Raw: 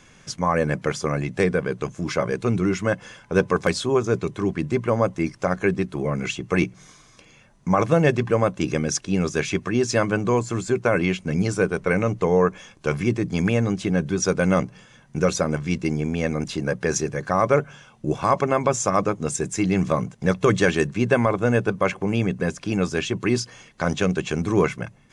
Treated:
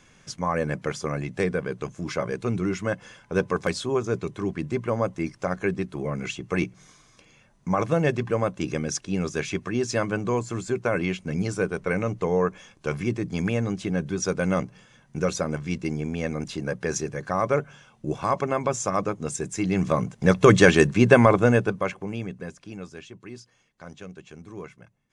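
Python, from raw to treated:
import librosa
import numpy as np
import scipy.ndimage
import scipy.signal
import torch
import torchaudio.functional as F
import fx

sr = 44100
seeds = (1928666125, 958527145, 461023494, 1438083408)

y = fx.gain(x, sr, db=fx.line((19.56, -4.5), (20.5, 4.0), (21.36, 4.0), (21.96, -7.5), (23.22, -19.5)))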